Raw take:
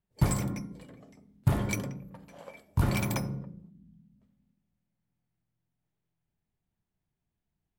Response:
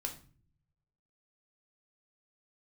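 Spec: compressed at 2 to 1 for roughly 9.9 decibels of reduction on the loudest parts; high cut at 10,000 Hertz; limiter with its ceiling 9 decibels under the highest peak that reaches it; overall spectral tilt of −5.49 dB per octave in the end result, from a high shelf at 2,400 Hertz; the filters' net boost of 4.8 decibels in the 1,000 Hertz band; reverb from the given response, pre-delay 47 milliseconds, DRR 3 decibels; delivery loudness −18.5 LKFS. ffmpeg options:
-filter_complex "[0:a]lowpass=10000,equalizer=frequency=1000:width_type=o:gain=5,highshelf=frequency=2400:gain=4.5,acompressor=threshold=-38dB:ratio=2,alimiter=level_in=6.5dB:limit=-24dB:level=0:latency=1,volume=-6.5dB,asplit=2[link_01][link_02];[1:a]atrim=start_sample=2205,adelay=47[link_03];[link_02][link_03]afir=irnorm=-1:irlink=0,volume=-2.5dB[link_04];[link_01][link_04]amix=inputs=2:normalize=0,volume=23dB"

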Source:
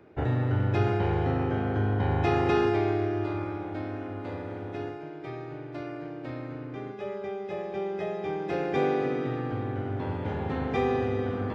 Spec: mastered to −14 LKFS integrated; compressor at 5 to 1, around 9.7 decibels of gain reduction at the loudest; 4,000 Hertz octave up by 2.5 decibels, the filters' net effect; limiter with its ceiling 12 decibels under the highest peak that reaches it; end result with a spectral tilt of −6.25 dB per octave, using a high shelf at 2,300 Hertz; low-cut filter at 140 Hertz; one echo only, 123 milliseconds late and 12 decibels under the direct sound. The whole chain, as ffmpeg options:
ffmpeg -i in.wav -af "highpass=140,highshelf=frequency=2300:gain=-4.5,equalizer=frequency=4000:width_type=o:gain=7.5,acompressor=threshold=-32dB:ratio=5,alimiter=level_in=11dB:limit=-24dB:level=0:latency=1,volume=-11dB,aecho=1:1:123:0.251,volume=28.5dB" out.wav

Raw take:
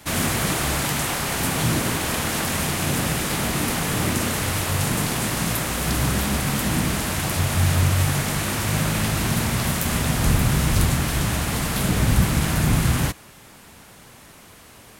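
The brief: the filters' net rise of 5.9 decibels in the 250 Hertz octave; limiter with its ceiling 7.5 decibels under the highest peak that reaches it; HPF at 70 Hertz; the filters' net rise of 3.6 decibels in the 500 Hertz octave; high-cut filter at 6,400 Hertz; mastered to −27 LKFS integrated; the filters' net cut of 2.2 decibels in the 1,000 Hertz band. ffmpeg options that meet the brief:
ffmpeg -i in.wav -af "highpass=70,lowpass=6400,equalizer=frequency=250:width_type=o:gain=7.5,equalizer=frequency=500:width_type=o:gain=3.5,equalizer=frequency=1000:width_type=o:gain=-4.5,volume=-4.5dB,alimiter=limit=-17dB:level=0:latency=1" out.wav

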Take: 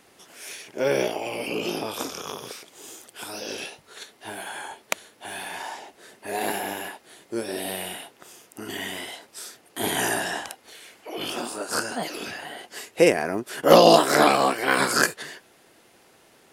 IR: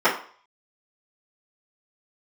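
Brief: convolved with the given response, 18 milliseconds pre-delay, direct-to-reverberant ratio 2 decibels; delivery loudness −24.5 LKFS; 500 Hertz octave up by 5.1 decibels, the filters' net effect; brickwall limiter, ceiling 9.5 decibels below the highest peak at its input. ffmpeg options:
-filter_complex "[0:a]equalizer=frequency=500:width_type=o:gain=6,alimiter=limit=-6.5dB:level=0:latency=1,asplit=2[link_01][link_02];[1:a]atrim=start_sample=2205,adelay=18[link_03];[link_02][link_03]afir=irnorm=-1:irlink=0,volume=-22.5dB[link_04];[link_01][link_04]amix=inputs=2:normalize=0,volume=-3dB"

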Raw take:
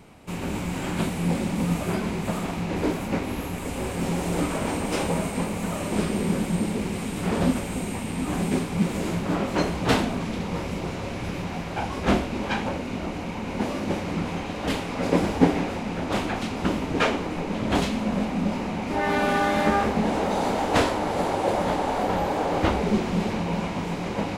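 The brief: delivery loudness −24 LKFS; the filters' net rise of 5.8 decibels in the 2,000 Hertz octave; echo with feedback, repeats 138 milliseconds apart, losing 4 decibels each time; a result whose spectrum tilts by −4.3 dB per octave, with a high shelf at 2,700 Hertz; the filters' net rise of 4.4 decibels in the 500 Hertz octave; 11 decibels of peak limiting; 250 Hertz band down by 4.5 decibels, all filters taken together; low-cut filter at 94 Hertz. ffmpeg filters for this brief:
ffmpeg -i in.wav -af "highpass=94,equalizer=frequency=250:width_type=o:gain=-8,equalizer=frequency=500:width_type=o:gain=7,equalizer=frequency=2000:width_type=o:gain=5.5,highshelf=frequency=2700:gain=3.5,alimiter=limit=-14dB:level=0:latency=1,aecho=1:1:138|276|414|552|690|828|966|1104|1242:0.631|0.398|0.25|0.158|0.0994|0.0626|0.0394|0.0249|0.0157,volume=-0.5dB" out.wav

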